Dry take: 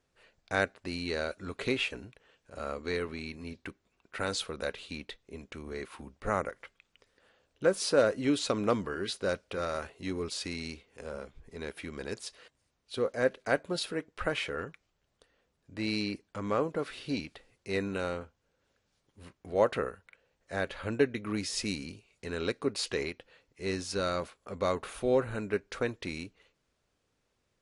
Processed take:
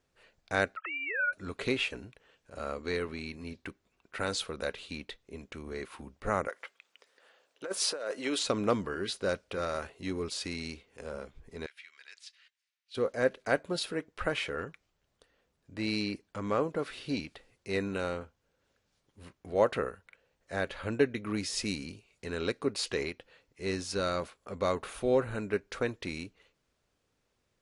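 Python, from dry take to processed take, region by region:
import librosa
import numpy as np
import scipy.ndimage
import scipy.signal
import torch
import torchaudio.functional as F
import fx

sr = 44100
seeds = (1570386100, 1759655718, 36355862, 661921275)

y = fx.chain(x, sr, fx.sine_speech(),
    fx.highpass_res(hz=1300.0, q=16.0),
    fx.band_squash(depth_pct=70), at=(0.76, 1.33))
y = fx.chain(y, sr, fx.highpass(hz=460.0, slope=12),
    fx.over_compress(threshold_db=-33.0, ratio=-1.0), at=(6.48, 8.43))
y = fx.chain(y, sr, fx.ladder_bandpass(hz=2500.0, resonance_pct=25),
    fx.high_shelf(hz=2800.0, db=12.0), at=(11.66, 12.95))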